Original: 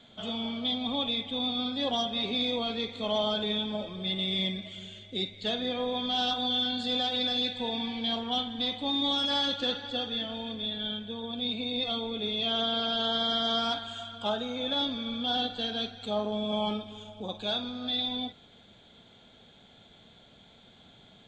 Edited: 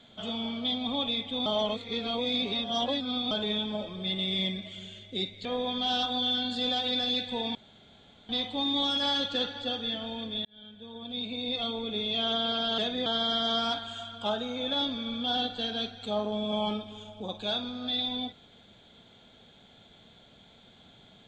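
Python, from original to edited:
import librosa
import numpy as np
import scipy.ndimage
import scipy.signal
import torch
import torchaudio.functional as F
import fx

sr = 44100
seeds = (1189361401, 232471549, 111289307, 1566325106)

y = fx.edit(x, sr, fx.reverse_span(start_s=1.46, length_s=1.85),
    fx.move(start_s=5.45, length_s=0.28, to_s=13.06),
    fx.room_tone_fill(start_s=7.83, length_s=0.74),
    fx.fade_in_span(start_s=10.73, length_s=1.54, curve='qsin'), tone=tone)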